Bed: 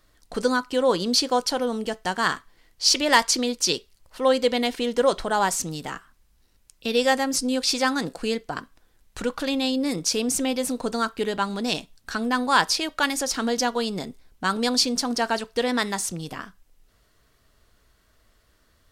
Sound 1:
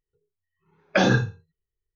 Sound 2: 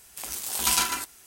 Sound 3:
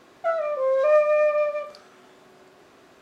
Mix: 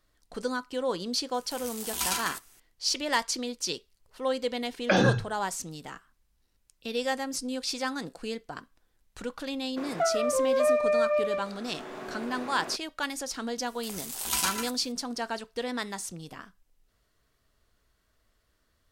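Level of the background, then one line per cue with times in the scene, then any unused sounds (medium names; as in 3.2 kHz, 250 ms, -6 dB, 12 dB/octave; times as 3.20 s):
bed -9 dB
1.34 s: add 2 -6.5 dB
3.94 s: add 1 -3.5 dB
9.76 s: add 3 -3.5 dB, fades 0.02 s + three bands compressed up and down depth 70%
13.66 s: add 2 -5 dB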